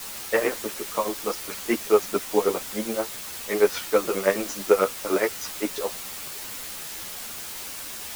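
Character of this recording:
tremolo triangle 9.4 Hz, depth 90%
a quantiser's noise floor 6 bits, dither triangular
a shimmering, thickened sound

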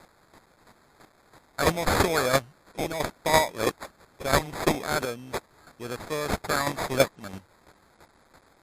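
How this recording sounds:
a quantiser's noise floor 10 bits, dither triangular
chopped level 3 Hz, depth 60%, duty 15%
aliases and images of a low sample rate 2,900 Hz, jitter 0%
MP3

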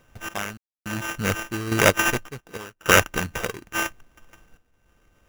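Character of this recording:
a buzz of ramps at a fixed pitch in blocks of 16 samples
sample-and-hold tremolo 3.5 Hz, depth 100%
aliases and images of a low sample rate 4,300 Hz, jitter 0%

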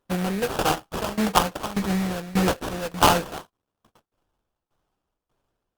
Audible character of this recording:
a buzz of ramps at a fixed pitch in blocks of 8 samples
tremolo saw down 1.7 Hz, depth 90%
aliases and images of a low sample rate 2,100 Hz, jitter 20%
Opus

